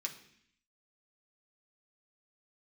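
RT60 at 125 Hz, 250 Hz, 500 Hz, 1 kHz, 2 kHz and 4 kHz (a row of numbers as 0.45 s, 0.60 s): 0.80 s, 0.85 s, 0.65 s, 0.65 s, 0.85 s, 0.80 s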